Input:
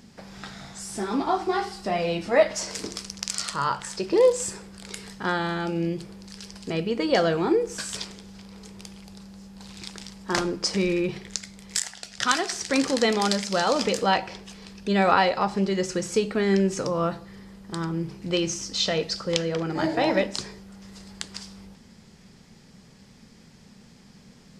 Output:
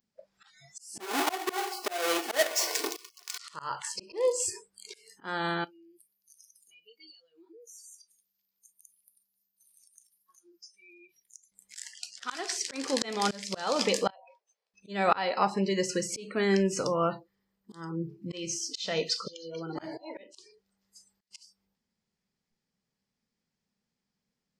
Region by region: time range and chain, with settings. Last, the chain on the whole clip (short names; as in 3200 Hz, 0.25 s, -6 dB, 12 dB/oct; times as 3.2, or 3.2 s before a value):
1–3.38 half-waves squared off + HPF 360 Hz + comb 2.7 ms, depth 35%
5.64–11.52 pre-emphasis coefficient 0.9 + notch 7900 Hz, Q 5.6 + compressor 12:1, threshold -45 dBFS
14.1–14.74 ladder high-pass 500 Hz, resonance 55% + compressor 4:1, threshold -39 dBFS + mismatched tape noise reduction decoder only
18.76–21.31 auto swell 0.701 s + thin delay 0.154 s, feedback 79%, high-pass 2100 Hz, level -21 dB
whole clip: spectral noise reduction 30 dB; low shelf 340 Hz -6.5 dB; auto swell 0.276 s